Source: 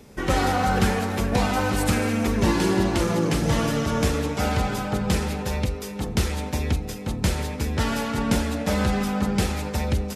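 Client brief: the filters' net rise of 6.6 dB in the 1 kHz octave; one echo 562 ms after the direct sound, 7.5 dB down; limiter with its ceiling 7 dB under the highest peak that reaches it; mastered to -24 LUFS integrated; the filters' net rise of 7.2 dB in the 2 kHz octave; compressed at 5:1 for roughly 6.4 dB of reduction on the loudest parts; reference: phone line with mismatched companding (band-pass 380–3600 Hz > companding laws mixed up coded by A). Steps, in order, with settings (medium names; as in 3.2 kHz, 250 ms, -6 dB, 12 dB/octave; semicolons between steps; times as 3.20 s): peaking EQ 1 kHz +7.5 dB; peaking EQ 2 kHz +7 dB; compression 5:1, threshold -21 dBFS; peak limiter -16.5 dBFS; band-pass 380–3600 Hz; delay 562 ms -7.5 dB; companding laws mixed up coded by A; trim +5 dB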